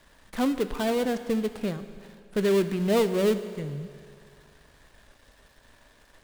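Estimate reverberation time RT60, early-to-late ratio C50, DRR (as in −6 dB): 2.3 s, 11.0 dB, 10.0 dB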